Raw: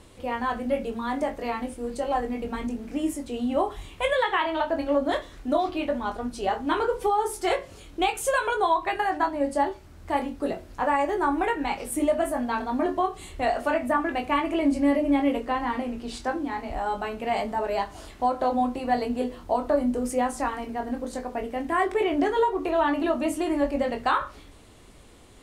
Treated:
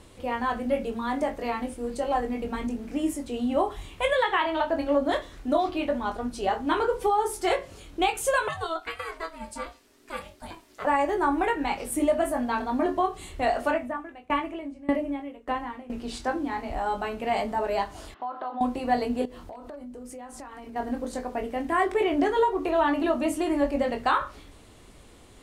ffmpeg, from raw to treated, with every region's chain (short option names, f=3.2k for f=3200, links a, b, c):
-filter_complex "[0:a]asettb=1/sr,asplit=3[a][b][c];[a]atrim=end=8.484[d];[b]atrim=start=8.48:end=10.85,asetpts=PTS-STARTPTS,afade=t=in:d=0.004:c=qsin,afade=t=out:st=2.366:d=0.004:c=qsin,flanger=delay=2:depth=1.7:regen=68:speed=1.1:shape=triangular,tiltshelf=f=1.3k:g=-8,aeval=exprs='val(0)*sin(2*PI*330*n/s)':c=same[e];[c]atrim=start=10.846[f];[d][e]acrossfade=d=0.004:c1=hsin:c2=qsin[g];[g][f]acrossfade=d=0.004:c1=qsin:c2=hsin,asettb=1/sr,asplit=3[h][i][j];[h]atrim=end=13.714[k];[i]atrim=start=13.71:end=15.9,asetpts=PTS-STARTPTS,afade=t=in:d=0.004:c=qsin,afade=t=out:st=2.186:d=0.004:c=qsin,acrossover=split=6000[l][m];[m]acompressor=threshold=-60dB:ratio=4:attack=1:release=60[n];[l][n]amix=inputs=2:normalize=0,equalizer=f=4.6k:t=o:w=0.37:g=-6,aeval=exprs='val(0)*pow(10,-23*if(lt(mod(1.7*n/s,1),2*abs(1.7)/1000),1-mod(1.7*n/s,1)/(2*abs(1.7)/1000),(mod(1.7*n/s,1)-2*abs(1.7)/1000)/(1-2*abs(1.7)/1000))/20)':c=same[o];[j]atrim=start=15.896[p];[k][o]acrossfade=d=0.004:c1=hsin:c2=qsin[q];[q][p]acrossfade=d=0.004:c1=qsin:c2=hsin,asettb=1/sr,asplit=3[r][s][t];[r]atrim=end=18.144[u];[s]atrim=start=18.14:end=18.61,asetpts=PTS-STARTPTS,afade=t=in:d=0.004:c=qsin,afade=t=out:st=0.466:d=0.004:c=qsin,highpass=420,equalizer=f=520:t=q:w=4:g=-9,equalizer=f=1.2k:t=q:w=4:g=5,equalizer=f=2.3k:t=q:w=4:g=-9,lowpass=f=3.3k:w=0.5412,lowpass=f=3.3k:w=1.3066,acompressor=threshold=-31dB:ratio=3:attack=3.2:release=140:knee=1:detection=peak[v];[t]atrim=start=18.606[w];[u][v]acrossfade=d=0.004:c1=hsin:c2=qsin[x];[x][w]acrossfade=d=0.004:c1=qsin:c2=hsin,asettb=1/sr,asplit=3[y][z][aa];[y]atrim=end=19.254[ab];[z]atrim=start=19.25:end=20.76,asetpts=PTS-STARTPTS,afade=t=in:d=0.004:c=qsin,afade=t=out:st=1.506:d=0.004:c=qsin,asoftclip=type=hard:threshold=-15.5dB,acompressor=threshold=-38dB:ratio=10:attack=3.2:release=140:knee=1:detection=peak[ac];[aa]atrim=start=20.756[ad];[ab][ac]acrossfade=d=0.004:c1=hsin:c2=qsin[ae];[ae][ad]acrossfade=d=0.004:c1=qsin:c2=hsin"